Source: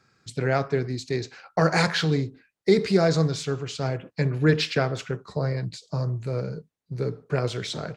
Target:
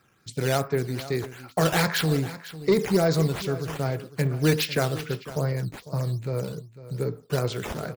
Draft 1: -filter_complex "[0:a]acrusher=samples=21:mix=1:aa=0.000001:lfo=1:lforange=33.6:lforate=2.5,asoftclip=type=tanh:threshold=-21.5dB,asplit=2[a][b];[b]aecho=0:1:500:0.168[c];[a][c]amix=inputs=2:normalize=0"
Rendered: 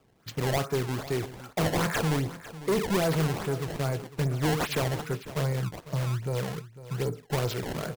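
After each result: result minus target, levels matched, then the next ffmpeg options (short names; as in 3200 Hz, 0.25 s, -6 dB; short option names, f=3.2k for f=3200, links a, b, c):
soft clip: distortion +11 dB; decimation with a swept rate: distortion +8 dB
-filter_complex "[0:a]acrusher=samples=21:mix=1:aa=0.000001:lfo=1:lforange=33.6:lforate=2.5,asoftclip=type=tanh:threshold=-11.5dB,asplit=2[a][b];[b]aecho=0:1:500:0.168[c];[a][c]amix=inputs=2:normalize=0"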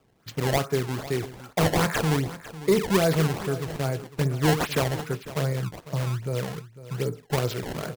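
decimation with a swept rate: distortion +8 dB
-filter_complex "[0:a]acrusher=samples=6:mix=1:aa=0.000001:lfo=1:lforange=9.6:lforate=2.5,asoftclip=type=tanh:threshold=-11.5dB,asplit=2[a][b];[b]aecho=0:1:500:0.168[c];[a][c]amix=inputs=2:normalize=0"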